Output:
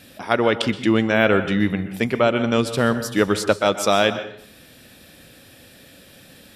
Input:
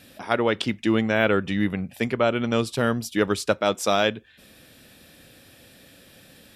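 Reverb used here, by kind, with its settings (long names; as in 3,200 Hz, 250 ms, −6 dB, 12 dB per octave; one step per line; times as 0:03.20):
dense smooth reverb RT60 0.59 s, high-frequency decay 0.75×, pre-delay 110 ms, DRR 11 dB
level +3.5 dB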